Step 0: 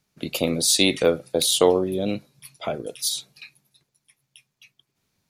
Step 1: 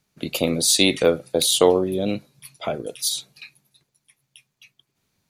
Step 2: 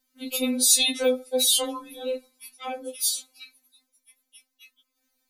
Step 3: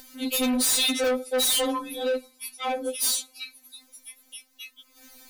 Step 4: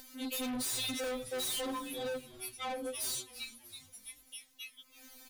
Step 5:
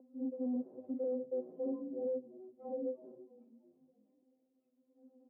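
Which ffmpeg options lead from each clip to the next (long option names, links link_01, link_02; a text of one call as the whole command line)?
ffmpeg -i in.wav -af "bandreject=frequency=5300:width=23,volume=1.5dB" out.wav
ffmpeg -i in.wav -filter_complex "[0:a]highshelf=frequency=9400:gain=11.5,acrossover=split=150|470|4000[link_01][link_02][link_03][link_04];[link_02]alimiter=limit=-21dB:level=0:latency=1[link_05];[link_01][link_05][link_03][link_04]amix=inputs=4:normalize=0,afftfilt=real='re*3.46*eq(mod(b,12),0)':imag='im*3.46*eq(mod(b,12),0)':win_size=2048:overlap=0.75,volume=-2.5dB" out.wav
ffmpeg -i in.wav -af "acompressor=mode=upward:threshold=-43dB:ratio=2.5,asoftclip=type=tanh:threshold=-28.5dB,volume=7.5dB" out.wav
ffmpeg -i in.wav -filter_complex "[0:a]asoftclip=type=tanh:threshold=-27.5dB,acompressor=threshold=-31dB:ratio=6,asplit=5[link_01][link_02][link_03][link_04][link_05];[link_02]adelay=329,afreqshift=-140,volume=-17dB[link_06];[link_03]adelay=658,afreqshift=-280,volume=-22.8dB[link_07];[link_04]adelay=987,afreqshift=-420,volume=-28.7dB[link_08];[link_05]adelay=1316,afreqshift=-560,volume=-34.5dB[link_09];[link_01][link_06][link_07][link_08][link_09]amix=inputs=5:normalize=0,volume=-4.5dB" out.wav
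ffmpeg -i in.wav -af "asuperpass=centerf=340:order=8:qfactor=0.81,volume=2dB" out.wav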